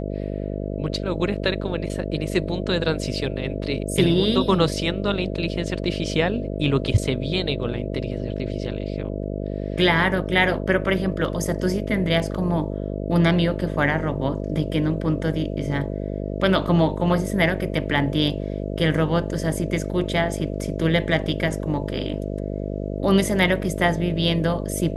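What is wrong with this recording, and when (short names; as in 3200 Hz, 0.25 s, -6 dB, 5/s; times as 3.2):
buzz 50 Hz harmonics 13 -28 dBFS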